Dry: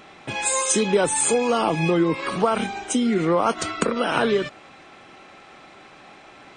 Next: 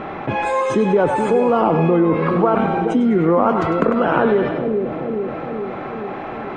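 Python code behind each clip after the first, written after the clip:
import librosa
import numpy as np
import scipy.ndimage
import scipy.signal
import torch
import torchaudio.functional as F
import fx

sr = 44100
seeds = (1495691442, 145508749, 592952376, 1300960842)

y = scipy.signal.sosfilt(scipy.signal.butter(2, 1300.0, 'lowpass', fs=sr, output='sos'), x)
y = fx.echo_split(y, sr, split_hz=560.0, low_ms=424, high_ms=101, feedback_pct=52, wet_db=-8.5)
y = fx.env_flatten(y, sr, amount_pct=50)
y = y * librosa.db_to_amplitude(2.5)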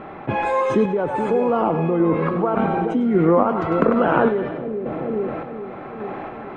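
y = fx.lowpass(x, sr, hz=2800.0, slope=6)
y = fx.tremolo_random(y, sr, seeds[0], hz=3.5, depth_pct=55)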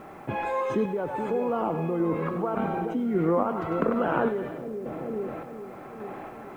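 y = fx.quant_dither(x, sr, seeds[1], bits=10, dither='triangular')
y = y * librosa.db_to_amplitude(-8.0)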